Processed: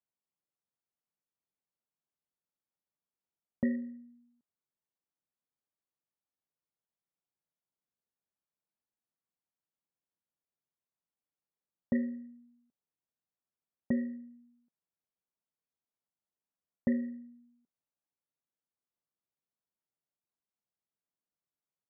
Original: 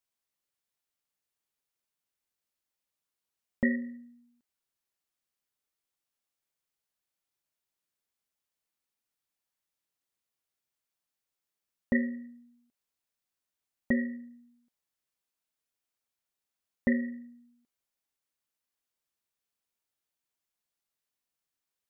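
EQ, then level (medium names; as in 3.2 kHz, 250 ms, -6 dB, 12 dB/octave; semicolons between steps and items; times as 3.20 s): high-pass 62 Hz; low-pass 1.1 kHz 12 dB/octave; peaking EQ 170 Hz +4.5 dB 0.77 oct; -4.0 dB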